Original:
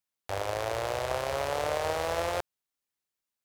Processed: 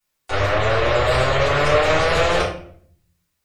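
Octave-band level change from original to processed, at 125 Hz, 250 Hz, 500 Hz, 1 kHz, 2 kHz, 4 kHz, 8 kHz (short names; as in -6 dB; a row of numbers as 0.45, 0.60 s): +18.0, +15.5, +12.0, +11.5, +16.0, +14.0, +7.0 dB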